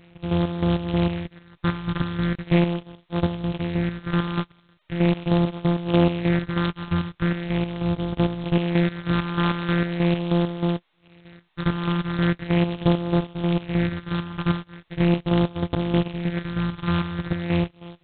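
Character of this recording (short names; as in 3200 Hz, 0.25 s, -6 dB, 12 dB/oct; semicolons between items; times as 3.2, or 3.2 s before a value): a buzz of ramps at a fixed pitch in blocks of 256 samples; chopped level 3.2 Hz, depth 60%, duty 45%; phasing stages 6, 0.4 Hz, lowest notch 570–1900 Hz; G.726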